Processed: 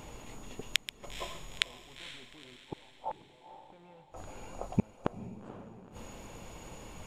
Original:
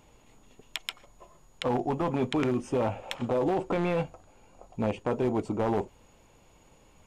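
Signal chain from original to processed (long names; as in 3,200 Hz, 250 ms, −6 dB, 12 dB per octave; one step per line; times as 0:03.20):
gate with flip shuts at −25 dBFS, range −41 dB
0:02.56–0:03.72: transistor ladder low-pass 980 Hz, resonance 70%
feedback delay with all-pass diffusion 469 ms, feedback 48%, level −12 dB
level +11 dB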